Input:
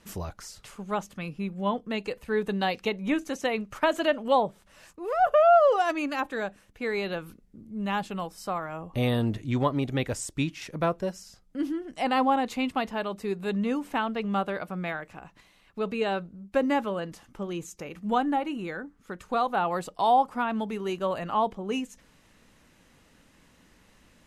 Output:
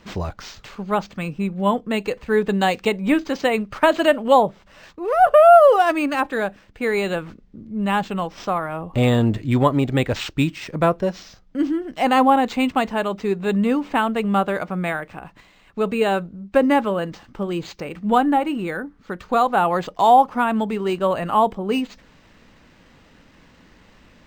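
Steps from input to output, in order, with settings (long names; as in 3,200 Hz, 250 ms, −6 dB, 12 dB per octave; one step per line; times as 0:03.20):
linearly interpolated sample-rate reduction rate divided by 4×
level +8.5 dB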